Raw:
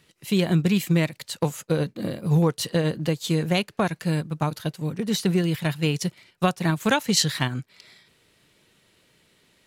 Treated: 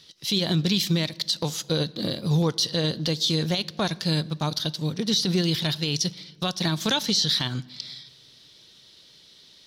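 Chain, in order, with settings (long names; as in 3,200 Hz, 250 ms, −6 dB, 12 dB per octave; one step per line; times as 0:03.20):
flat-topped bell 4,400 Hz +15.5 dB 1.1 octaves
brickwall limiter −13.5 dBFS, peak gain reduction 18 dB
on a send: convolution reverb RT60 1.3 s, pre-delay 3 ms, DRR 19 dB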